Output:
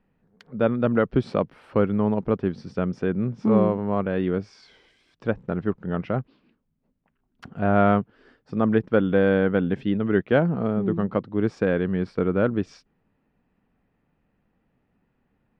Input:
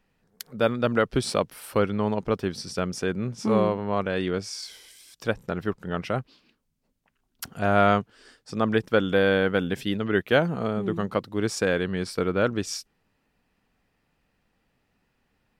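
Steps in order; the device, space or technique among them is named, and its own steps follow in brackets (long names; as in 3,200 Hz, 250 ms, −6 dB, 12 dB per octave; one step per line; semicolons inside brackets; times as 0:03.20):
phone in a pocket (low-pass filter 3,000 Hz 12 dB per octave; parametric band 200 Hz +5 dB 1.9 octaves; high-shelf EQ 2,300 Hz −9 dB)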